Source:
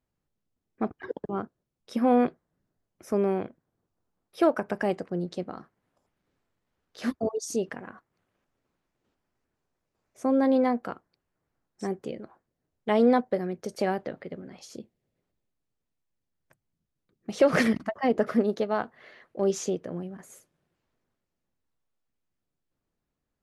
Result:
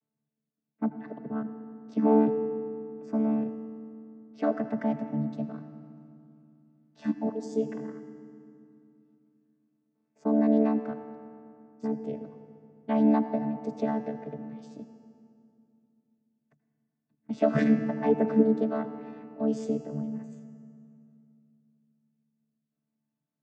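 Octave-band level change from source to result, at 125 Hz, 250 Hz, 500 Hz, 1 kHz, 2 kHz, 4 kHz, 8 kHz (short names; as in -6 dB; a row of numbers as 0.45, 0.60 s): +2.0 dB, +2.0 dB, -3.0 dB, -4.5 dB, -8.5 dB, under -10 dB, under -15 dB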